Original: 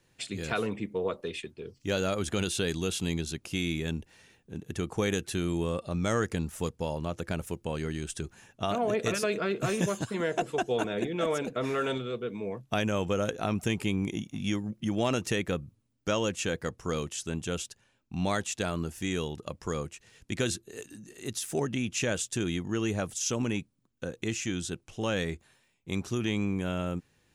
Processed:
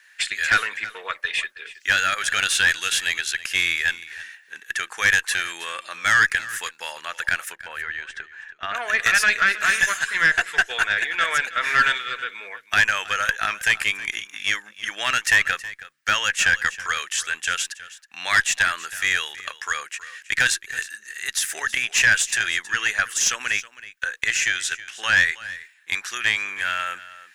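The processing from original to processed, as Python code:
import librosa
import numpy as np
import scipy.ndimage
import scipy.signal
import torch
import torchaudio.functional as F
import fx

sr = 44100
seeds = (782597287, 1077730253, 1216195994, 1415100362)

p1 = fx.highpass_res(x, sr, hz=1700.0, q=5.5)
p2 = fx.cheby_harmonics(p1, sr, harmonics=(5, 6), levels_db=(-14, -24), full_scale_db=-10.0)
p3 = fx.spacing_loss(p2, sr, db_at_10k=30, at=(7.51, 8.74), fade=0.02)
p4 = p3 + fx.echo_single(p3, sr, ms=321, db=-17.0, dry=0)
y = F.gain(torch.from_numpy(p4), 5.0).numpy()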